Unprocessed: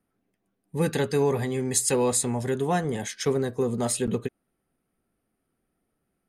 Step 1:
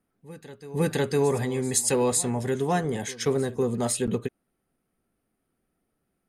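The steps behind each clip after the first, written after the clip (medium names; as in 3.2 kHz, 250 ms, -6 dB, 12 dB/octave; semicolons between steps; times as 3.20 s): reverse echo 507 ms -18.5 dB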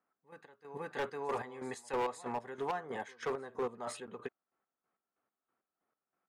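square tremolo 3.1 Hz, depth 65%, duty 40%; band-pass filter 1.1 kHz, Q 1.6; hard clipper -31.5 dBFS, distortion -12 dB; trim +2 dB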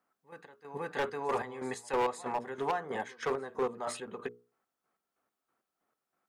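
hum notches 60/120/180/240/300/360/420/480 Hz; trim +4.5 dB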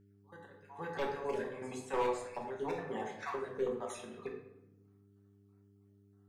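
random holes in the spectrogram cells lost 33%; simulated room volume 240 m³, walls mixed, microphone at 1.1 m; mains buzz 100 Hz, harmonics 4, -59 dBFS -4 dB/octave; trim -5.5 dB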